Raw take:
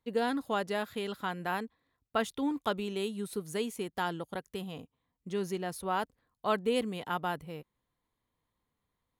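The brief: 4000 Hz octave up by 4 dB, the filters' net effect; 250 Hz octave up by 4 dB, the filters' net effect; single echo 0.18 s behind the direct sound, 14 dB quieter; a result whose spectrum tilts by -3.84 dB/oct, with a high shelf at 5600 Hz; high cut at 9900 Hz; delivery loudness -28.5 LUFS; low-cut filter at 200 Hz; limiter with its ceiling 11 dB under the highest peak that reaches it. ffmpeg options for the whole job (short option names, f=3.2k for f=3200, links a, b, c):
-af "highpass=200,lowpass=9.9k,equalizer=f=250:t=o:g=7,equalizer=f=4k:t=o:g=7.5,highshelf=f=5.6k:g=-6,alimiter=level_in=0.5dB:limit=-24dB:level=0:latency=1,volume=-0.5dB,aecho=1:1:180:0.2,volume=7.5dB"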